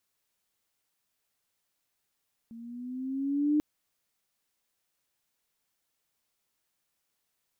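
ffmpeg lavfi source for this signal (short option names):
-f lavfi -i "aevalsrc='pow(10,(-21+21.5*(t/1.09-1))/20)*sin(2*PI*227*1.09/(5*log(2)/12)*(exp(5*log(2)/12*t/1.09)-1))':d=1.09:s=44100"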